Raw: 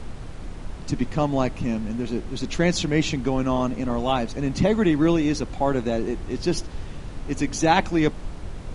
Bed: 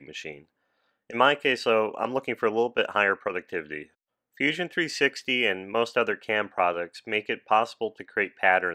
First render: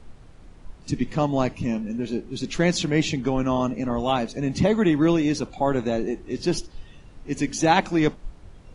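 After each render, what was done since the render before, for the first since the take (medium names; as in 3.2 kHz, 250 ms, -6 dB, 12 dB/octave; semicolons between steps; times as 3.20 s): noise print and reduce 12 dB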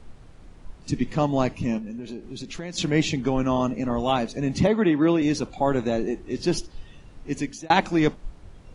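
1.78–2.78 s: compression 4:1, threshold -32 dBFS; 4.67–5.22 s: band-pass 170–3500 Hz; 7.30–7.70 s: fade out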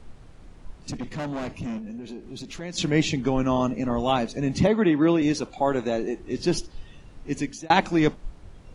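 0.90–2.61 s: valve stage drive 27 dB, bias 0.3; 5.32–6.20 s: tone controls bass -6 dB, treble 0 dB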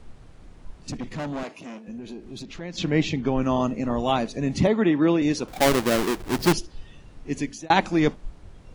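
1.43–1.88 s: high-pass 360 Hz; 2.43–3.42 s: distance through air 98 m; 5.48–6.53 s: square wave that keeps the level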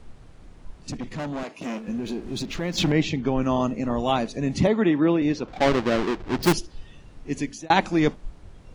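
1.61–2.92 s: waveshaping leveller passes 2; 5.00–6.43 s: distance through air 150 m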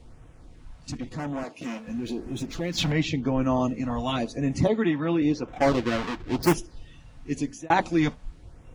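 LFO notch sine 0.95 Hz 340–4600 Hz; comb of notches 200 Hz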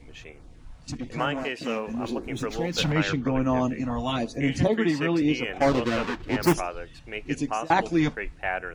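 add bed -8 dB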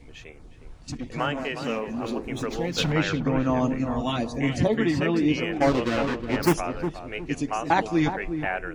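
filtered feedback delay 362 ms, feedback 34%, low-pass 850 Hz, level -7 dB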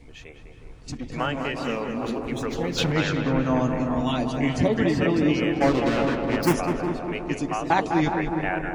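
filtered feedback delay 203 ms, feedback 72%, low-pass 2.2 kHz, level -6 dB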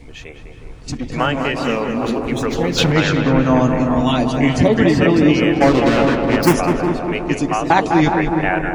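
trim +8.5 dB; peak limiter -2 dBFS, peak gain reduction 2.5 dB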